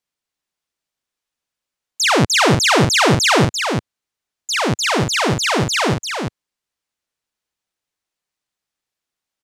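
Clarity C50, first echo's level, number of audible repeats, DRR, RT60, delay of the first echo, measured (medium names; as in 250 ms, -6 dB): no reverb, -5.5 dB, 1, no reverb, no reverb, 343 ms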